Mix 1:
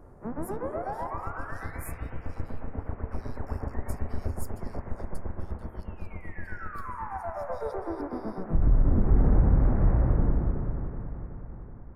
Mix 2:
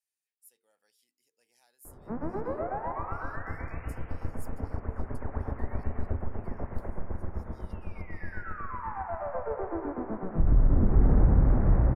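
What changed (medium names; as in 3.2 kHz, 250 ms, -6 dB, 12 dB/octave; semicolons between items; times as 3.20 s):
speech -7.5 dB; background: entry +1.85 s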